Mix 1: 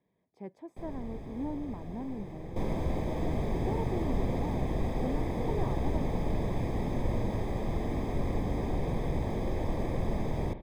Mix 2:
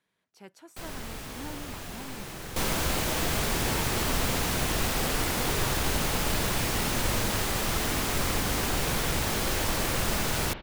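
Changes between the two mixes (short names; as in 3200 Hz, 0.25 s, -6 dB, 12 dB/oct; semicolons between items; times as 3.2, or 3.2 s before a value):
speech -7.5 dB; master: remove running mean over 31 samples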